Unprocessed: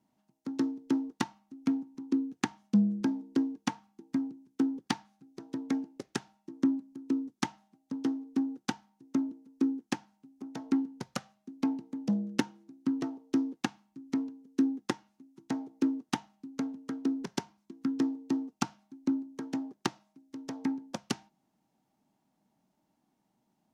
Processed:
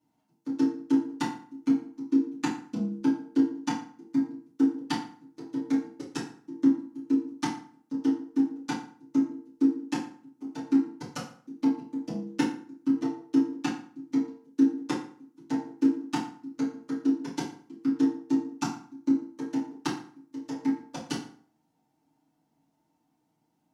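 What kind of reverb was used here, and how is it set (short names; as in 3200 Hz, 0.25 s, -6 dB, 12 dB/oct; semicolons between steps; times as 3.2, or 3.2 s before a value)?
FDN reverb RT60 0.5 s, low-frequency decay 1×, high-frequency decay 0.75×, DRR -9 dB; gain -8 dB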